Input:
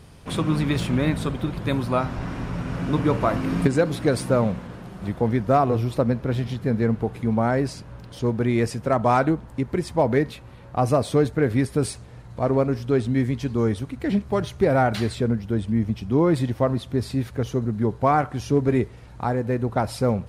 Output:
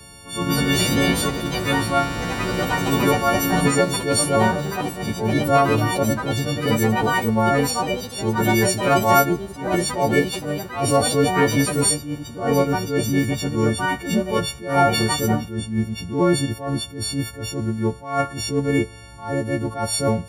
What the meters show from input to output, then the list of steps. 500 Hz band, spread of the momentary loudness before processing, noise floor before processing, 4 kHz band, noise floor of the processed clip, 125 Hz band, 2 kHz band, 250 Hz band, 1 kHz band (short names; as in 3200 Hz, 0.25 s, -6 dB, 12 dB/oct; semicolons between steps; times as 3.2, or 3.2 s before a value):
+1.5 dB, 9 LU, -43 dBFS, +12.0 dB, -38 dBFS, 0.0 dB, +8.5 dB, +1.5 dB, +4.5 dB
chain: frequency quantiser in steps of 4 st; echoes that change speed 0.29 s, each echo +5 st, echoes 2, each echo -6 dB; attack slew limiter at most 120 dB/s; gain +2 dB